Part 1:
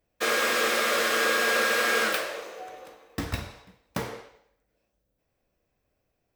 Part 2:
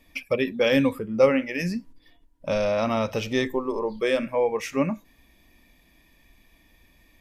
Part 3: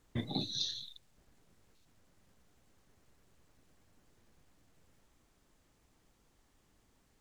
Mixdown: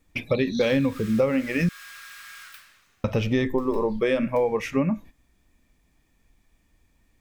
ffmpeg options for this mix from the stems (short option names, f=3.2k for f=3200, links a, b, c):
-filter_complex "[0:a]highpass=f=1.2k:w=0.5412,highpass=f=1.2k:w=1.3066,adelay=400,volume=-18.5dB[a];[1:a]agate=range=-15dB:threshold=-46dB:ratio=16:detection=peak,bass=f=250:g=8,treble=f=4k:g=-12,volume=3dB,asplit=3[b][c][d];[b]atrim=end=1.69,asetpts=PTS-STARTPTS,afade=t=out:st=1.686:d=0.004:c=hsin[e];[c]atrim=start=1.69:end=3.04,asetpts=PTS-STARTPTS,volume=0[f];[d]atrim=start=3.04,asetpts=PTS-STARTPTS,afade=t=in:d=0.004:c=hsin[g];[e][f][g]concat=n=3:v=0:a=1[h];[2:a]volume=-2.5dB[i];[a][h][i]amix=inputs=3:normalize=0,highshelf=f=6.9k:g=6,acompressor=threshold=-18dB:ratio=10"